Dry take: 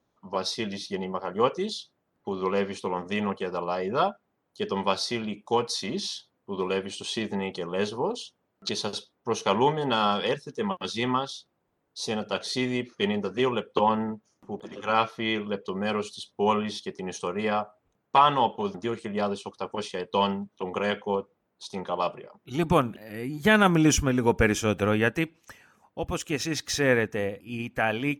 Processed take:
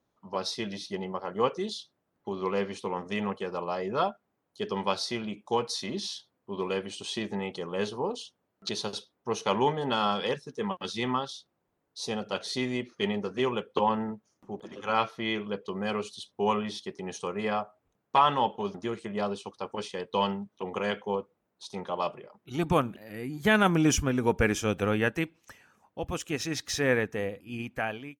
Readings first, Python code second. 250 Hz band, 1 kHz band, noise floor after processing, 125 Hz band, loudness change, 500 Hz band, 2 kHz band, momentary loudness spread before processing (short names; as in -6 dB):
-3.0 dB, -3.0 dB, -79 dBFS, -3.0 dB, -3.0 dB, -3.0 dB, -3.0 dB, 12 LU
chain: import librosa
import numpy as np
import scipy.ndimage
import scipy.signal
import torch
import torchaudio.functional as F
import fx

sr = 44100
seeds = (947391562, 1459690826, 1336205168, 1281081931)

y = fx.fade_out_tail(x, sr, length_s=0.5)
y = F.gain(torch.from_numpy(y), -3.0).numpy()